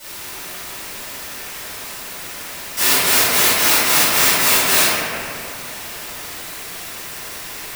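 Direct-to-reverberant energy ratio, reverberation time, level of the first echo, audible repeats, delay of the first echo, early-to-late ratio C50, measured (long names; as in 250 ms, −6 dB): −18.0 dB, 2.6 s, no echo audible, no echo audible, no echo audible, −5.5 dB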